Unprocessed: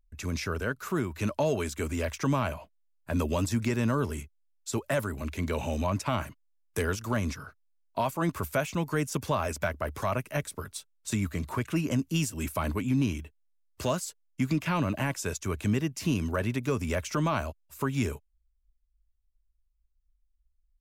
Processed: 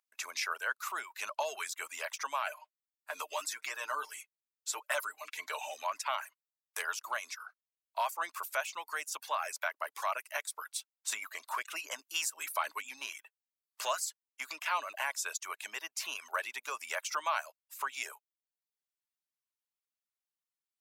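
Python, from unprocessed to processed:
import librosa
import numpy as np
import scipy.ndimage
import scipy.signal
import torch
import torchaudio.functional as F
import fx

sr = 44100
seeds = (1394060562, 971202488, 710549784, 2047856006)

y = fx.comb(x, sr, ms=6.6, depth=0.65, at=(2.46, 5.74))
y = fx.dereverb_blind(y, sr, rt60_s=0.61)
y = scipy.signal.sosfilt(scipy.signal.butter(4, 780.0, 'highpass', fs=sr, output='sos'), y)
y = fx.rider(y, sr, range_db=3, speed_s=2.0)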